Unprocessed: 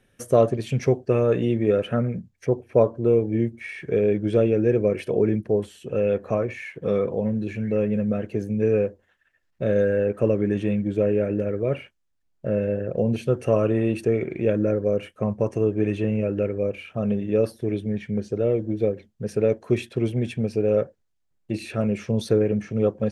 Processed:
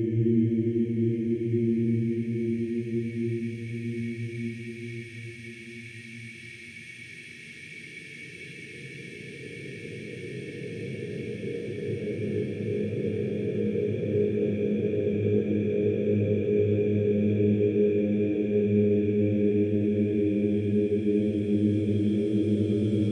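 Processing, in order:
extreme stretch with random phases 29×, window 0.50 s, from 0:03.44
flat-topped bell 1,000 Hz −12 dB 2.5 octaves

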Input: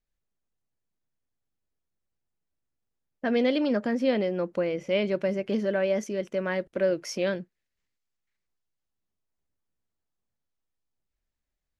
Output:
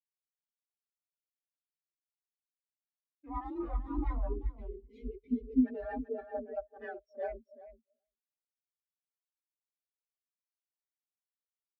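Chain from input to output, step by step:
high-pass filter 120 Hz 12 dB per octave
in parallel at −11 dB: gain into a clipping stage and back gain 24 dB
on the sum: single-tap delay 277 ms −15 dB
wrap-around overflow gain 20 dB
frequency shifter +44 Hz
time-frequency box erased 0:04.29–0:05.63, 530–2,000 Hz
on a send: repeating echo 386 ms, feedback 33%, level −3 dB
on the sum: every bin expanded away from the loudest bin 4 to 1
level −7.5 dB

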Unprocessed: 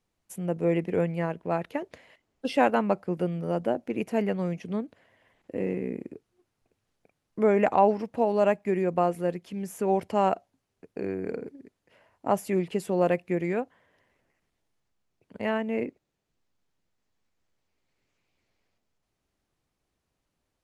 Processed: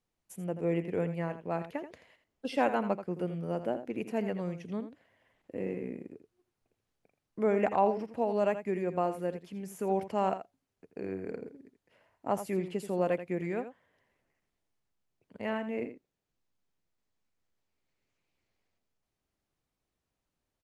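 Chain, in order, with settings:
single-tap delay 83 ms −11 dB
level −6 dB

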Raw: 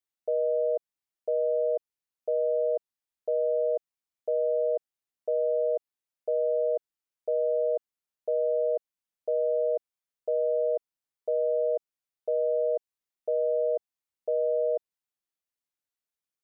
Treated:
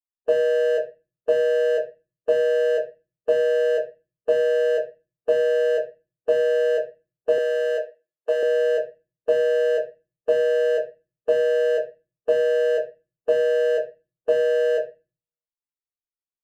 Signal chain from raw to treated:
adaptive Wiener filter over 25 samples
noise gate with hold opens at −24 dBFS
convolution reverb RT60 0.25 s, pre-delay 3 ms, DRR −5 dB
harmonic and percussive parts rebalanced percussive −5 dB
0:07.38–0:08.43: high-pass filter 480 Hz 12 dB per octave
level +5.5 dB

